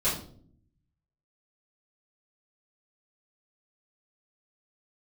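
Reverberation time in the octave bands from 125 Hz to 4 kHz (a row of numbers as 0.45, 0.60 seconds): 1.2, 1.0, 0.65, 0.45, 0.35, 0.40 seconds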